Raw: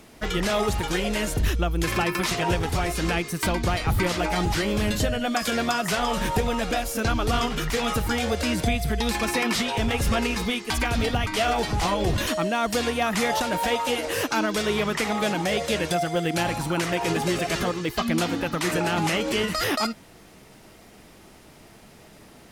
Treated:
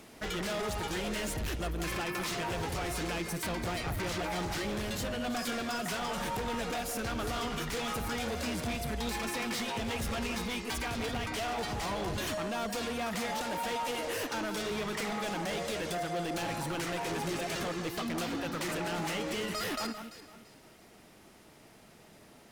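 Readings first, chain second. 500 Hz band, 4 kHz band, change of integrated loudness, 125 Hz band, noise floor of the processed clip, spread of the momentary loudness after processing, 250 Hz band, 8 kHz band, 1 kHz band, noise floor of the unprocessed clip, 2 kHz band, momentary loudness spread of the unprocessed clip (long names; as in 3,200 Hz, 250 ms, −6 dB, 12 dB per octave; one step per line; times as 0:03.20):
−9.5 dB, −9.0 dB, −9.5 dB, −11.5 dB, −57 dBFS, 1 LU, −10.0 dB, −8.0 dB, −9.5 dB, −50 dBFS, −9.5 dB, 2 LU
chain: low-shelf EQ 88 Hz −7.5 dB
speech leveller 0.5 s
hard clipping −26.5 dBFS, distortion −8 dB
delay that swaps between a low-pass and a high-pass 169 ms, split 2,100 Hz, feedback 52%, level −7.5 dB
level −6 dB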